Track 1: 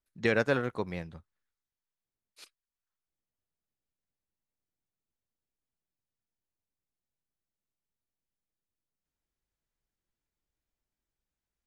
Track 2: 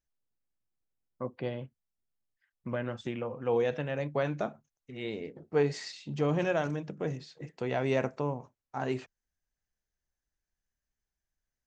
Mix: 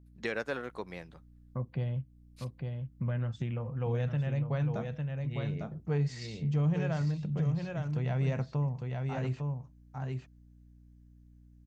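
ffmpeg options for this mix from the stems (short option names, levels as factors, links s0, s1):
-filter_complex "[0:a]highpass=f=280:p=1,aeval=exprs='val(0)+0.002*(sin(2*PI*60*n/s)+sin(2*PI*2*60*n/s)/2+sin(2*PI*3*60*n/s)/3+sin(2*PI*4*60*n/s)/4+sin(2*PI*5*60*n/s)/5)':c=same,volume=0.841[s0];[1:a]lowshelf=f=210:t=q:w=1.5:g=12.5,adelay=350,volume=0.891,asplit=2[s1][s2];[s2]volume=0.501,aecho=0:1:853:1[s3];[s0][s1][s3]amix=inputs=3:normalize=0,acompressor=threshold=0.0112:ratio=1.5"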